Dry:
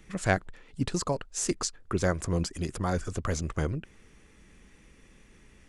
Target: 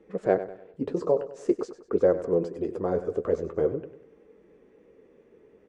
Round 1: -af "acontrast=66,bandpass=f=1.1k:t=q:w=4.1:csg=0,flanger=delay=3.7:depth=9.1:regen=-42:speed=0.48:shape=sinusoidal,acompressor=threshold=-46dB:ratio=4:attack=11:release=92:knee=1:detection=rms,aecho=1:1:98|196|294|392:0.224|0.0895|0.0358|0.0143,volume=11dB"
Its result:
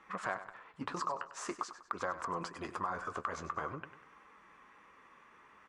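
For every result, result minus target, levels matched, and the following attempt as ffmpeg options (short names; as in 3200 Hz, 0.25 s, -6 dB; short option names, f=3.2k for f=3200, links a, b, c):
compressor: peak gain reduction +15 dB; 1000 Hz band +13.5 dB
-af "acontrast=66,bandpass=f=1.1k:t=q:w=4.1:csg=0,flanger=delay=3.7:depth=9.1:regen=-42:speed=0.48:shape=sinusoidal,aecho=1:1:98|196|294|392:0.224|0.0895|0.0358|0.0143,volume=11dB"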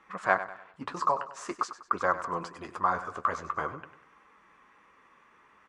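1000 Hz band +14.0 dB
-af "acontrast=66,bandpass=f=450:t=q:w=4.1:csg=0,flanger=delay=3.7:depth=9.1:regen=-42:speed=0.48:shape=sinusoidal,aecho=1:1:98|196|294|392:0.224|0.0895|0.0358|0.0143,volume=11dB"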